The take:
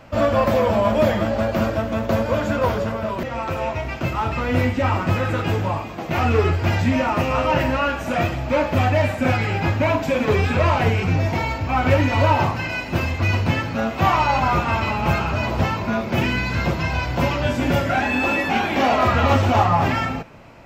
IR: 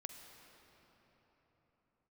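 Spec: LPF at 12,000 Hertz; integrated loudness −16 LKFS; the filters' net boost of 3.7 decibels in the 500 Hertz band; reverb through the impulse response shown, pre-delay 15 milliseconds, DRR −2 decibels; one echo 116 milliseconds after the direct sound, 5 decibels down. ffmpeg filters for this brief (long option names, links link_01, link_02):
-filter_complex "[0:a]lowpass=12000,equalizer=frequency=500:width_type=o:gain=4.5,aecho=1:1:116:0.562,asplit=2[link_01][link_02];[1:a]atrim=start_sample=2205,adelay=15[link_03];[link_02][link_03]afir=irnorm=-1:irlink=0,volume=6dB[link_04];[link_01][link_04]amix=inputs=2:normalize=0,volume=-2.5dB"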